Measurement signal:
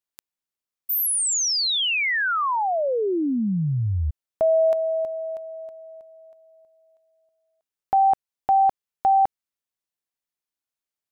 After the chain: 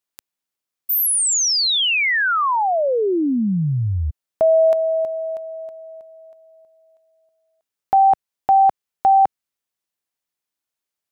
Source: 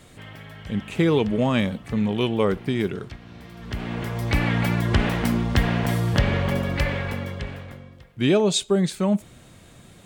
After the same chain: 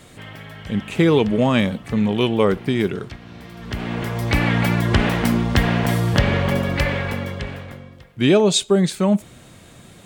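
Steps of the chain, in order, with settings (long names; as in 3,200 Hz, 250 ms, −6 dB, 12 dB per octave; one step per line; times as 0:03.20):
low-shelf EQ 71 Hz −5.5 dB
level +4.5 dB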